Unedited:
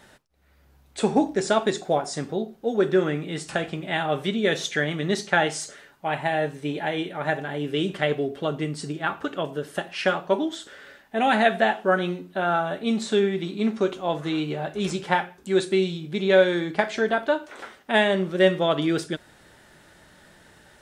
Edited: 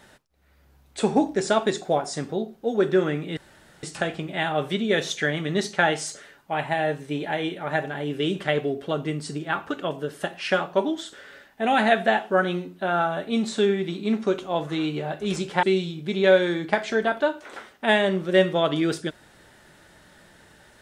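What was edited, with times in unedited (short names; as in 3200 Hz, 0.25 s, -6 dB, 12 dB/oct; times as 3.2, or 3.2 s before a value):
3.37 insert room tone 0.46 s
15.17–15.69 cut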